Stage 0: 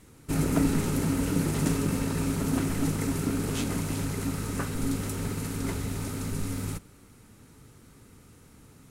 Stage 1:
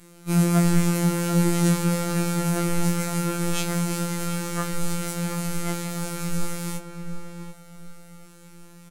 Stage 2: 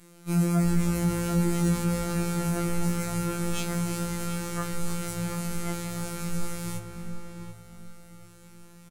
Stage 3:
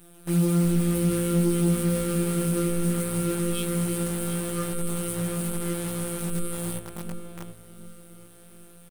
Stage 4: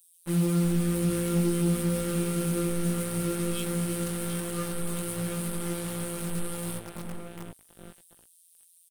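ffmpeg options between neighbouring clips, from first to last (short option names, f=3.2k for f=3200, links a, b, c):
-filter_complex "[0:a]afftfilt=real='hypot(re,im)*cos(PI*b)':imag='0':win_size=2048:overlap=0.75,asplit=2[a][b];[b]adelay=735,lowpass=f=1.8k:p=1,volume=-7dB,asplit=2[c][d];[d]adelay=735,lowpass=f=1.8k:p=1,volume=0.3,asplit=2[e][f];[f]adelay=735,lowpass=f=1.8k:p=1,volume=0.3,asplit=2[g][h];[h]adelay=735,lowpass=f=1.8k:p=1,volume=0.3[i];[a][c][e][g][i]amix=inputs=5:normalize=0,afftfilt=real='re*2.83*eq(mod(b,8),0)':imag='im*2.83*eq(mod(b,8),0)':win_size=2048:overlap=0.75,volume=6dB"
-filter_complex "[0:a]asoftclip=type=tanh:threshold=-7dB,asplit=4[a][b][c][d];[b]adelay=306,afreqshift=-110,volume=-16dB[e];[c]adelay=612,afreqshift=-220,volume=-25.9dB[f];[d]adelay=918,afreqshift=-330,volume=-35.8dB[g];[a][e][f][g]amix=inputs=4:normalize=0,volume=-3.5dB"
-af "firequalizer=gain_entry='entry(100,0);entry(230,9);entry(510,9);entry(730,-25);entry(1200,3);entry(1900,-4);entry(3300,7);entry(6100,-23);entry(8600,12);entry(14000,5)':delay=0.05:min_phase=1,acrusher=bits=6:dc=4:mix=0:aa=0.000001,asoftclip=type=tanh:threshold=-10.5dB,volume=-2.5dB"
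-filter_complex "[0:a]acrossover=split=4100[a][b];[a]acrusher=bits=5:mix=0:aa=0.5[c];[c][b]amix=inputs=2:normalize=0,volume=-3dB" -ar 48000 -c:a aac -b:a 128k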